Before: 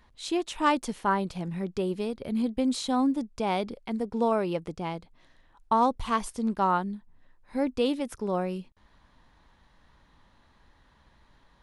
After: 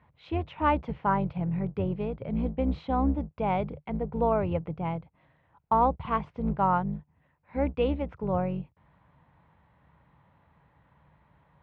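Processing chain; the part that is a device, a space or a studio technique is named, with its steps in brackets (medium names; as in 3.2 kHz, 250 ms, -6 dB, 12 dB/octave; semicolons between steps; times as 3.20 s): sub-octave bass pedal (octave divider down 2 oct, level -1 dB; cabinet simulation 67–2300 Hz, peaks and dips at 150 Hz +8 dB, 240 Hz -7 dB, 360 Hz -7 dB, 1.2 kHz -3 dB, 1.7 kHz -7 dB); 6.95–7.84 s: peaking EQ 2.7 kHz +5 dB 1.1 oct; trim +1.5 dB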